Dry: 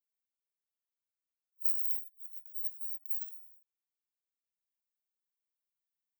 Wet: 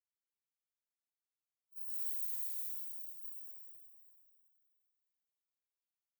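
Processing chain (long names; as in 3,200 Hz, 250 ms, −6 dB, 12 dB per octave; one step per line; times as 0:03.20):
0:01.76–0:02.52: spike at every zero crossing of −30.5 dBFS
convolution reverb RT60 2.9 s, pre-delay 103 ms, DRR −60 dB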